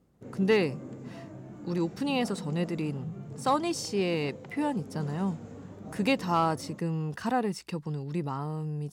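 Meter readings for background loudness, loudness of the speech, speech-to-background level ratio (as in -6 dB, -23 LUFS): -44.0 LUFS, -30.5 LUFS, 13.5 dB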